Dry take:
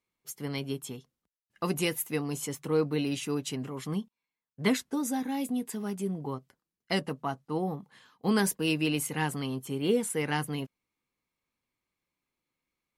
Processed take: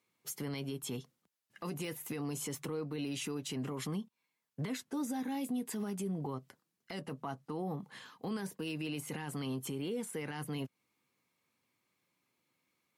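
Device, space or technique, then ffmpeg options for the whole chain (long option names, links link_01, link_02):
podcast mastering chain: -af "highpass=frequency=100:width=0.5412,highpass=frequency=100:width=1.3066,deesser=0.7,acompressor=threshold=-39dB:ratio=4,alimiter=level_in=12dB:limit=-24dB:level=0:latency=1:release=24,volume=-12dB,volume=6.5dB" -ar 44100 -c:a libmp3lame -b:a 96k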